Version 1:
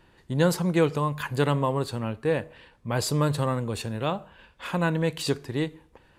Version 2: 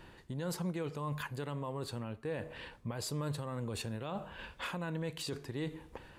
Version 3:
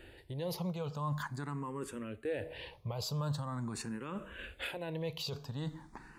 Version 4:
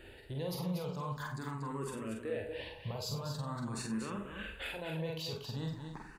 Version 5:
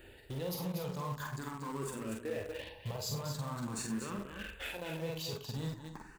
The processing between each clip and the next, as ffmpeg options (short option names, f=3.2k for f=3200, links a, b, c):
-af "areverse,acompressor=threshold=-34dB:ratio=5,areverse,alimiter=level_in=12dB:limit=-24dB:level=0:latency=1:release=368,volume=-12dB,dynaudnorm=f=240:g=3:m=3dB,volume=4dB"
-filter_complex "[0:a]asplit=2[a][b];[b]afreqshift=0.44[c];[a][c]amix=inputs=2:normalize=1,volume=3dB"
-filter_complex "[0:a]alimiter=level_in=7.5dB:limit=-24dB:level=0:latency=1:release=420,volume=-7.5dB,asplit=2[a][b];[b]adelay=45,volume=-5dB[c];[a][c]amix=inputs=2:normalize=0,asplit=2[d][e];[e]aecho=0:1:49.56|236.2:0.447|0.447[f];[d][f]amix=inputs=2:normalize=0"
-filter_complex "[0:a]aexciter=amount=1.6:drive=6:freq=6.2k,flanger=delay=0:depth=3.8:regen=-75:speed=0.93:shape=sinusoidal,asplit=2[a][b];[b]acrusher=bits=6:mix=0:aa=0.000001,volume=-11dB[c];[a][c]amix=inputs=2:normalize=0,volume=2dB"